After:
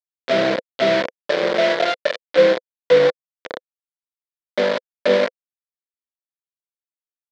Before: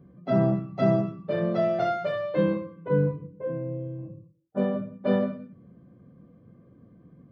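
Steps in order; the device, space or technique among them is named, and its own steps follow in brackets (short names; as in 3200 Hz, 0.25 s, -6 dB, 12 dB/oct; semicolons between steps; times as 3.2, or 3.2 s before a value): 4.65–5.17 low shelf 270 Hz +2 dB; hand-held game console (bit-crush 4-bit; speaker cabinet 420–4200 Hz, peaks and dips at 510 Hz +8 dB, 830 Hz -8 dB, 1200 Hz -8 dB, 2700 Hz -6 dB); gain +7.5 dB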